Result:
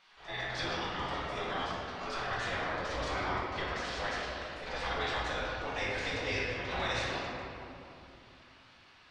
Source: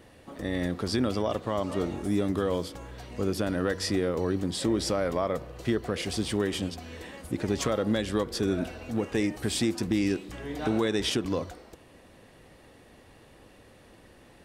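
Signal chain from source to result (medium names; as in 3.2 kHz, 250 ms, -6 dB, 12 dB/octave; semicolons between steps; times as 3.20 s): spectral gate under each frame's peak -15 dB weak; low-pass 5.4 kHz 24 dB/octave; time stretch by phase-locked vocoder 0.63×; reverberation RT60 2.8 s, pre-delay 6 ms, DRR -6.5 dB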